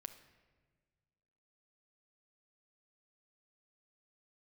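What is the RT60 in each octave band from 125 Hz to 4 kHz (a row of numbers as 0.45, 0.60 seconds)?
2.1, 2.0, 1.7, 1.3, 1.3, 0.95 seconds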